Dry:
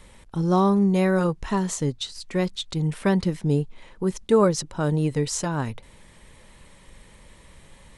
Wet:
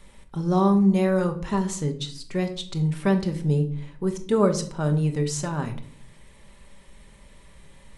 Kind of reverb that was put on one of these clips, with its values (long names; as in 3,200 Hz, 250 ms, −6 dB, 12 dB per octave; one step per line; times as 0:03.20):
rectangular room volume 710 cubic metres, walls furnished, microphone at 1.2 metres
level −3.5 dB